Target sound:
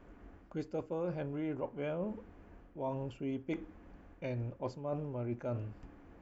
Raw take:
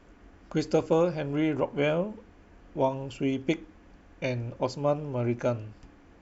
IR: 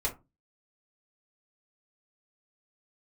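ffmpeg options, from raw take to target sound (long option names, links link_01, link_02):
-af "equalizer=frequency=5600:width_type=o:width=2.1:gain=-11.5,areverse,acompressor=threshold=-34dB:ratio=6,areverse,volume=-1dB"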